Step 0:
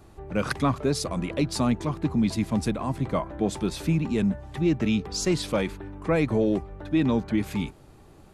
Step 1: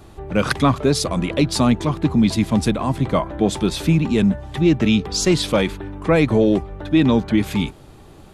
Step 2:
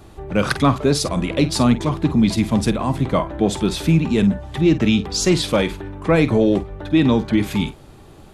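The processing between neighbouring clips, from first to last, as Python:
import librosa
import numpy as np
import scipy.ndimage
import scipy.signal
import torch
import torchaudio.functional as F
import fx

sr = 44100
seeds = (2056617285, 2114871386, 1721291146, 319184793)

y1 = fx.peak_eq(x, sr, hz=3400.0, db=4.5, octaves=0.5)
y1 = F.gain(torch.from_numpy(y1), 7.5).numpy()
y2 = fx.doubler(y1, sr, ms=49.0, db=-13.0)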